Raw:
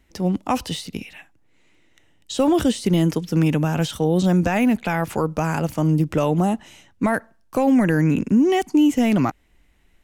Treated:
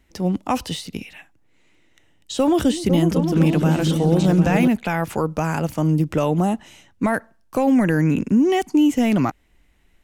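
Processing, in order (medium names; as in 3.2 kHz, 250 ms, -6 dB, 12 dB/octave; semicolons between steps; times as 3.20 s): 2.37–4.68 s: delay with an opening low-pass 251 ms, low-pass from 200 Hz, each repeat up 2 oct, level -3 dB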